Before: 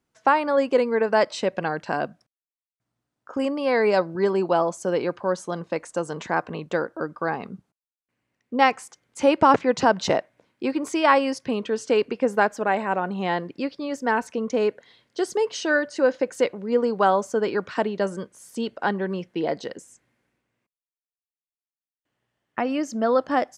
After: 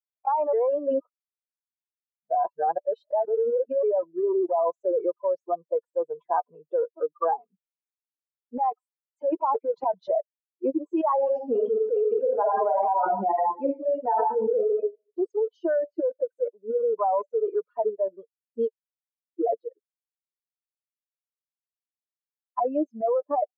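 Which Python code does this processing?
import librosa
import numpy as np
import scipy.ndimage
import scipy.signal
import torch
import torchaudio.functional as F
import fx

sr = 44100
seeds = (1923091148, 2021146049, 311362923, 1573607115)

y = fx.reverb_throw(x, sr, start_s=11.13, length_s=3.54, rt60_s=0.86, drr_db=-2.0)
y = fx.edit(y, sr, fx.reverse_span(start_s=0.53, length_s=3.3),
    fx.silence(start_s=18.71, length_s=0.68), tone=tone)
y = fx.bin_expand(y, sr, power=3.0)
y = scipy.signal.sosfilt(scipy.signal.cheby1(3, 1.0, [450.0, 990.0], 'bandpass', fs=sr, output='sos'), y)
y = fx.env_flatten(y, sr, amount_pct=100)
y = y * 10.0 ** (-5.0 / 20.0)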